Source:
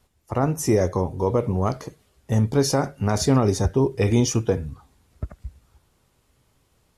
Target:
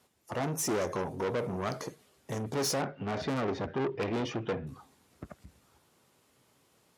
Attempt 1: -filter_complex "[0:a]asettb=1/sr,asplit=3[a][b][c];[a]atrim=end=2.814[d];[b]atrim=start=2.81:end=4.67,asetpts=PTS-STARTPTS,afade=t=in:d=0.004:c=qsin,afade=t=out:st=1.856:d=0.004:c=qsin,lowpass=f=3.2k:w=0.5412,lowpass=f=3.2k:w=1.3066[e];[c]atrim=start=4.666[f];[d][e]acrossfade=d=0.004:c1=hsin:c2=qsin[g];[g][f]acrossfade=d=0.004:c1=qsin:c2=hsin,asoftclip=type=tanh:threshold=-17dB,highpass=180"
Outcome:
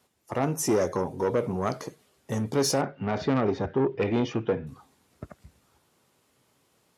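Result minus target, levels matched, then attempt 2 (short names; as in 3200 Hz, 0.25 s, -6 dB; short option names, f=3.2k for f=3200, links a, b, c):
soft clip: distortion -7 dB
-filter_complex "[0:a]asettb=1/sr,asplit=3[a][b][c];[a]atrim=end=2.814[d];[b]atrim=start=2.81:end=4.67,asetpts=PTS-STARTPTS,afade=t=in:d=0.004:c=qsin,afade=t=out:st=1.856:d=0.004:c=qsin,lowpass=f=3.2k:w=0.5412,lowpass=f=3.2k:w=1.3066[e];[c]atrim=start=4.666[f];[d][e]acrossfade=d=0.004:c1=hsin:c2=qsin[g];[g][f]acrossfade=d=0.004:c1=qsin:c2=hsin,asoftclip=type=tanh:threshold=-27dB,highpass=180"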